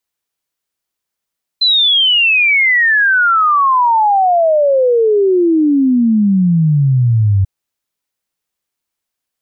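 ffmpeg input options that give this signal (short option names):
-f lavfi -i "aevalsrc='0.398*clip(min(t,5.84-t)/0.01,0,1)*sin(2*PI*4100*5.84/log(94/4100)*(exp(log(94/4100)*t/5.84)-1))':d=5.84:s=44100"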